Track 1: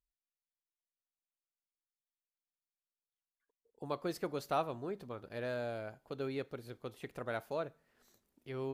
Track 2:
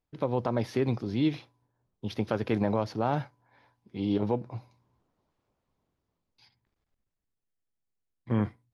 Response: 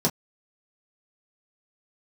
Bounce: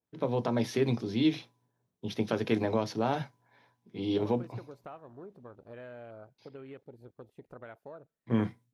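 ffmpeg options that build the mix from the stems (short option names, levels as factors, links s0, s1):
-filter_complex "[0:a]afwtdn=0.00355,acompressor=threshold=0.01:ratio=6,adelay=350,volume=0.708[s0];[1:a]highpass=97,adynamicequalizer=threshold=0.00398:dfrequency=2000:dqfactor=0.7:tfrequency=2000:tqfactor=0.7:attack=5:release=100:ratio=0.375:range=4:mode=boostabove:tftype=highshelf,volume=0.668,asplit=2[s1][s2];[s2]volume=0.0891[s3];[2:a]atrim=start_sample=2205[s4];[s3][s4]afir=irnorm=-1:irlink=0[s5];[s0][s1][s5]amix=inputs=3:normalize=0"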